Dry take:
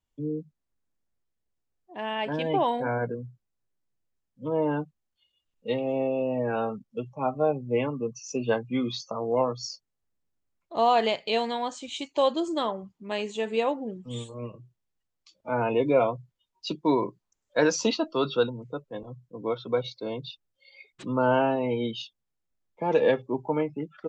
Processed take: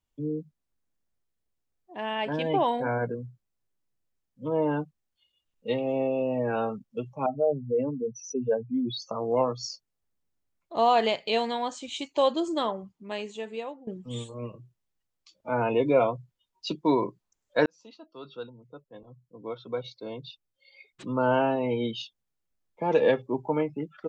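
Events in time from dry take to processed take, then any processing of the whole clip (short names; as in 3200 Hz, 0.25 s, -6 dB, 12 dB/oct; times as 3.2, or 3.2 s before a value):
7.26–9.02 spectral contrast raised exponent 2.4
12.71–13.87 fade out, to -17.5 dB
17.66–21.8 fade in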